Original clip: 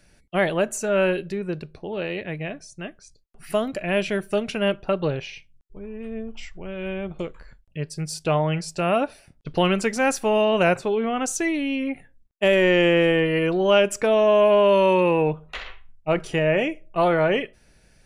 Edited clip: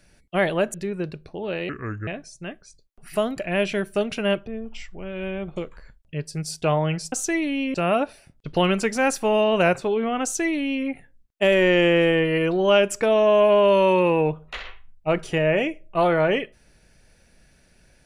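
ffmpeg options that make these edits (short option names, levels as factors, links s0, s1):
-filter_complex "[0:a]asplit=7[s0][s1][s2][s3][s4][s5][s6];[s0]atrim=end=0.742[s7];[s1]atrim=start=1.228:end=2.184[s8];[s2]atrim=start=2.18:end=2.44,asetpts=PTS-STARTPTS,asetrate=29988,aresample=44100[s9];[s3]atrim=start=2.436:end=4.842[s10];[s4]atrim=start=6.098:end=8.752[s11];[s5]atrim=start=11.238:end=11.862[s12];[s6]atrim=start=8.748[s13];[s7][s8]acrossfade=d=0.004:c1=hsin:c2=hsin[s14];[s14][s9]acrossfade=d=0.004:c1=hsin:c2=hsin[s15];[s15][s10]acrossfade=d=0.004:c1=hsin:c2=hsin[s16];[s16][s11]acrossfade=d=0.004:c1=hsin:c2=hsin[s17];[s17][s12]acrossfade=d=0.004:c1=hsin:c2=hsin[s18];[s18][s13]acrossfade=d=0.004:c1=hsin:c2=hsin"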